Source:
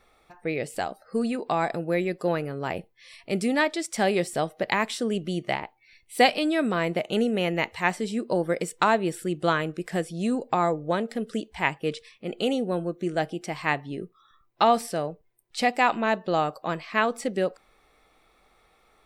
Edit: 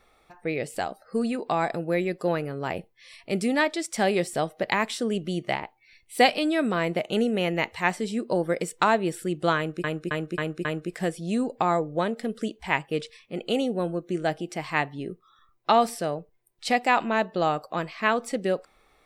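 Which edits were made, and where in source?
0:09.57–0:09.84: repeat, 5 plays

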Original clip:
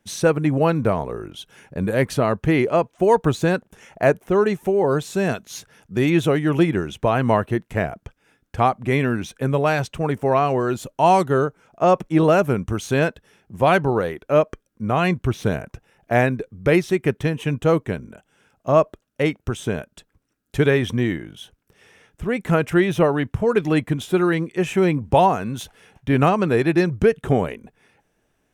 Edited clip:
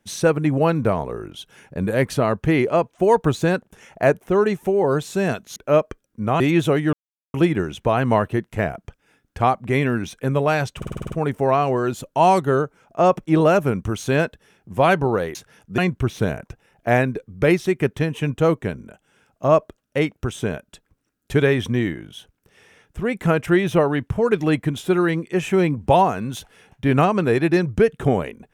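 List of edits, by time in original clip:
0:05.56–0:05.99: swap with 0:14.18–0:15.02
0:06.52: splice in silence 0.41 s
0:09.95: stutter 0.05 s, 8 plays

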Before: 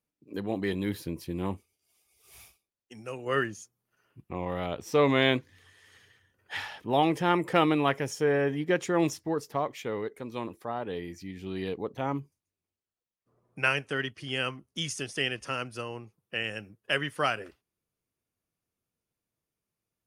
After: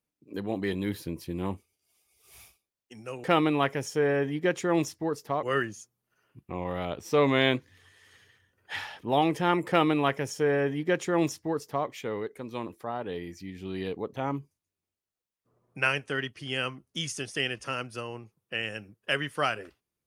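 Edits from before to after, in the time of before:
0:07.49–0:09.68: duplicate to 0:03.24

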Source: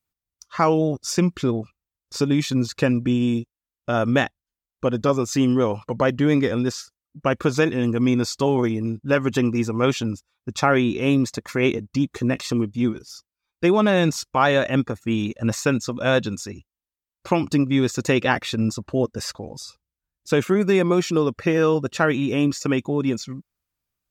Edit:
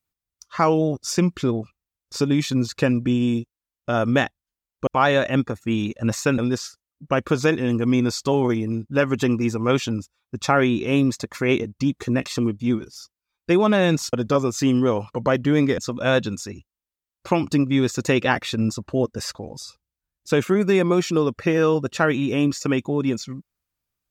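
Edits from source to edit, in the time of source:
0:04.87–0:06.52: swap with 0:14.27–0:15.78

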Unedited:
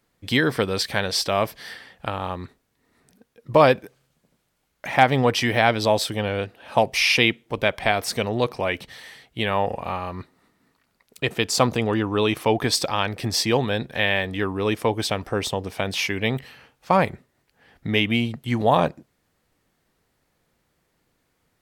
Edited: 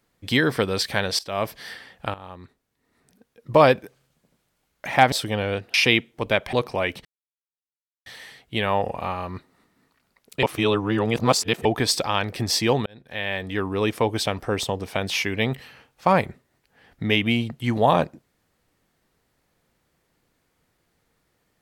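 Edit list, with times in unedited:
0:01.19–0:01.52: fade in, from −20.5 dB
0:02.14–0:03.51: fade in, from −14.5 dB
0:05.12–0:05.98: remove
0:06.60–0:07.06: remove
0:07.85–0:08.38: remove
0:08.90: splice in silence 1.01 s
0:11.27–0:12.49: reverse
0:13.70–0:14.52: fade in linear

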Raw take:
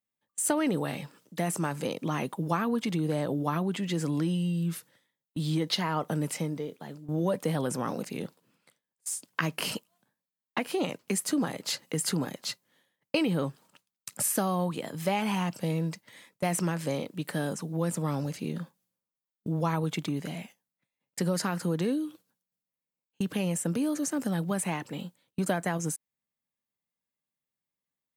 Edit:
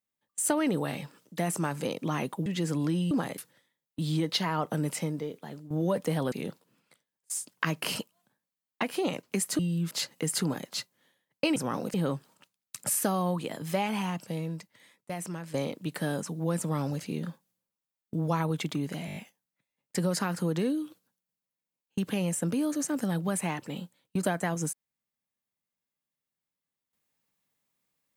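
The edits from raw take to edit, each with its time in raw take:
0:02.46–0:03.79: remove
0:04.44–0:04.76: swap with 0:11.35–0:11.62
0:07.70–0:08.08: move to 0:13.27
0:14.97–0:16.87: fade out quadratic, to −8.5 dB
0:20.39: stutter 0.02 s, 6 plays

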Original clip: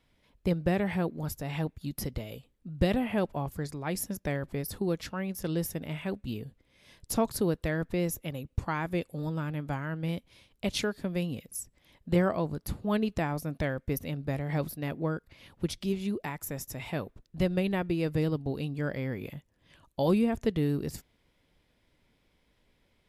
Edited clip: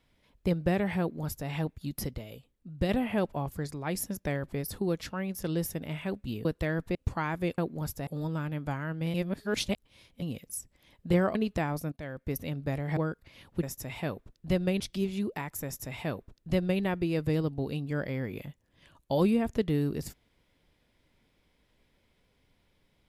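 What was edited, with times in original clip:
0:01.00–0:01.49: duplicate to 0:09.09
0:02.14–0:02.89: clip gain −3.5 dB
0:06.45–0:07.48: remove
0:07.98–0:08.46: remove
0:10.16–0:11.24: reverse
0:12.37–0:12.96: remove
0:13.53–0:14.04: fade in, from −18 dB
0:14.58–0:15.02: remove
0:16.53–0:17.70: duplicate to 0:15.68

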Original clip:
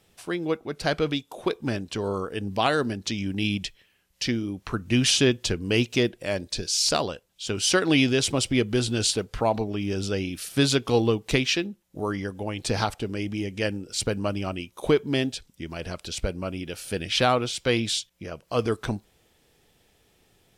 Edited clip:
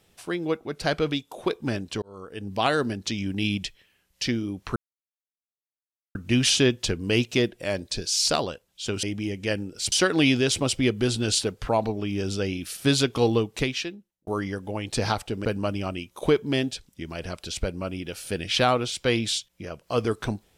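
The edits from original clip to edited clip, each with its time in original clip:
0:02.02–0:02.68: fade in
0:04.76: splice in silence 1.39 s
0:11.07–0:11.99: fade out
0:13.17–0:14.06: move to 0:07.64

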